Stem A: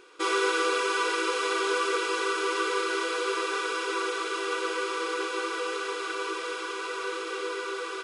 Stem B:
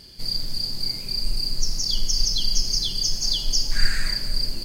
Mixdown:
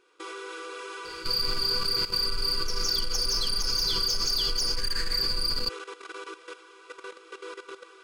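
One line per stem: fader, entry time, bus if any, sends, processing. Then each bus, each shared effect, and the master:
−6.0 dB, 0.00 s, no send, no processing
+1.0 dB, 1.05 s, no send, parametric band 4,600 Hz +8.5 dB 0.23 octaves; soft clipping −15.5 dBFS, distortion −12 dB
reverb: not used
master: output level in coarse steps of 13 dB

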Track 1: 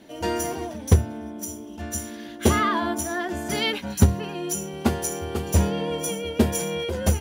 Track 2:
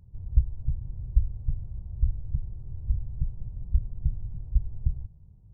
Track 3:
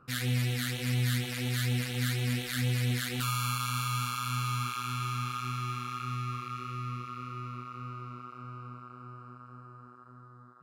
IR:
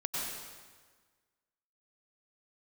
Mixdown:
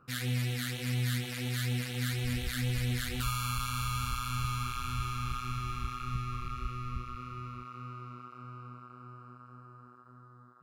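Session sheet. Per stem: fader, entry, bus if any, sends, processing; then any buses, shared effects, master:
muted
−2.0 dB, 2.10 s, bus A, no send, no processing
−2.5 dB, 0.00 s, no bus, no send, every ending faded ahead of time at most 120 dB per second
bus A: 0.0 dB, downward compressor, threshold −35 dBFS, peak gain reduction 19 dB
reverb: not used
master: no processing

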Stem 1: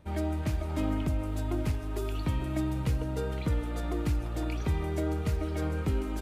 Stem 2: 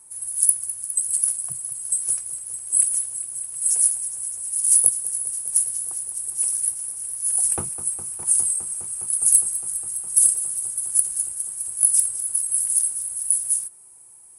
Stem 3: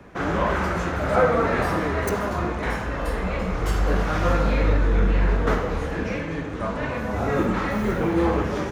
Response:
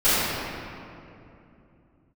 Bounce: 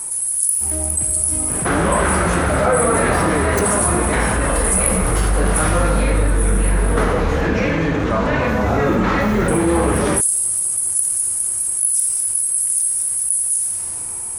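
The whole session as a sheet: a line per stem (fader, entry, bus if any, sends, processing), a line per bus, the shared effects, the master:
−15.5 dB, 0.55 s, send −24 dB, no processing
−9.5 dB, 0.00 s, muted 0:07.03–0:09.48, send −19 dB, no processing
+1.0 dB, 1.50 s, no send, no processing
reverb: on, RT60 2.8 s, pre-delay 3 ms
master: envelope flattener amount 70%

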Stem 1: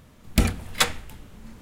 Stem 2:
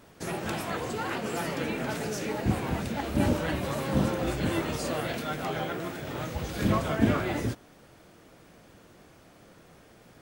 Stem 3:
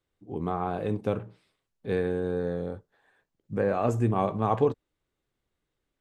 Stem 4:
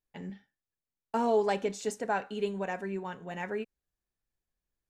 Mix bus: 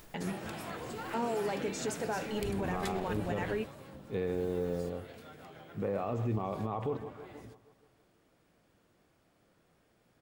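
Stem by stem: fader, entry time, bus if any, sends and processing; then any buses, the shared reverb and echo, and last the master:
−10.0 dB, 2.05 s, no send, no echo send, downward compressor, threshold −24 dBFS, peak gain reduction 10.5 dB
0:03.50 −4.5 dB → 0:03.75 −15 dB, 0.00 s, no send, echo send −21 dB, notch filter 6,100 Hz, Q 21; downward compressor 6 to 1, threshold −33 dBFS, peak gain reduction 15 dB
−3.5 dB, 2.25 s, no send, echo send −17.5 dB, Chebyshev low-pass filter 3,400 Hz, order 2; notch filter 1,600 Hz, Q 5.2
+1.5 dB, 0.00 s, no send, no echo send, upward compression, threshold −35 dBFS; brickwall limiter −28 dBFS, peak gain reduction 12 dB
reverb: not used
echo: repeating echo 158 ms, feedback 56%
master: brickwall limiter −24 dBFS, peak gain reduction 9.5 dB

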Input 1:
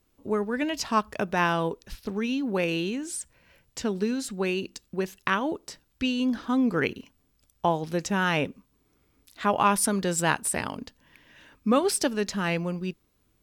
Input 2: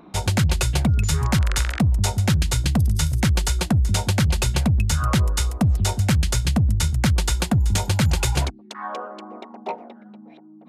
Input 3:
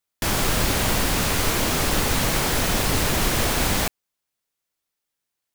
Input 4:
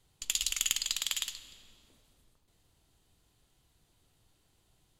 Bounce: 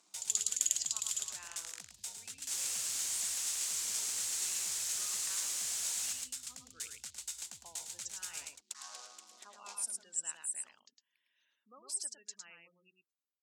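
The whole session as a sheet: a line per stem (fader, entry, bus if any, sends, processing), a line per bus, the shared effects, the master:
−5.5 dB, 0.00 s, no send, echo send −4 dB, gate on every frequency bin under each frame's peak −20 dB strong
+2.5 dB, 0.00 s, no send, echo send −8 dB, brickwall limiter −21 dBFS, peak gain reduction 11.5 dB; short delay modulated by noise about 3,400 Hz, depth 0.034 ms
−4.5 dB, 2.25 s, no send, echo send −4 dB, no processing
+2.0 dB, 0.00 s, no send, no echo send, no processing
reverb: not used
echo: single-tap delay 107 ms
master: resonant band-pass 7,400 Hz, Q 2.7

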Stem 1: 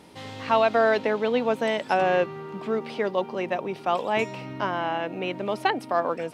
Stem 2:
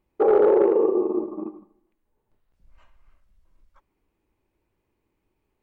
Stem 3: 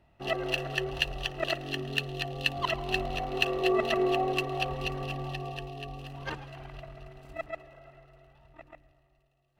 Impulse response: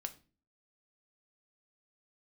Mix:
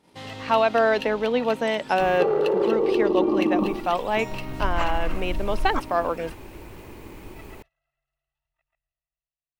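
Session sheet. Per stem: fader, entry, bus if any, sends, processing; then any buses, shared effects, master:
0.0 dB, 0.00 s, send −17 dB, no processing
−6.5 dB, 2.00 s, no send, envelope flattener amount 100%
−5.0 dB, 0.00 s, no send, guitar amp tone stack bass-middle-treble 10-0-10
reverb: on, RT60 0.35 s, pre-delay 4 ms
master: noise gate −48 dBFS, range −15 dB

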